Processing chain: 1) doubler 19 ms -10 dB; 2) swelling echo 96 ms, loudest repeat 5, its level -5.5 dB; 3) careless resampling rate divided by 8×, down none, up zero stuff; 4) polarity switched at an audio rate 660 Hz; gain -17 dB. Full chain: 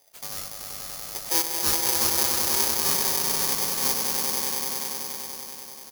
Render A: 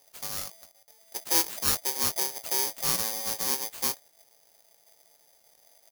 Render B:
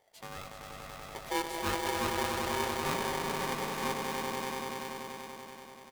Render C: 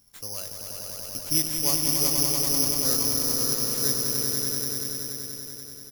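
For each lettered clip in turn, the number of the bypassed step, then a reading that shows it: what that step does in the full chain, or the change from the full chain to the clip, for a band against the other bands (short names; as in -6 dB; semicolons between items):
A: 2, momentary loudness spread change -1 LU; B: 3, 8 kHz band -18.0 dB; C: 4, 1 kHz band -9.0 dB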